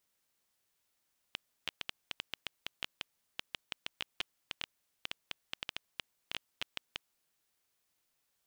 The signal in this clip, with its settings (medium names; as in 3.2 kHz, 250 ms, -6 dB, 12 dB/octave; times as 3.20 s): random clicks 6.9 per s -18 dBFS 5.78 s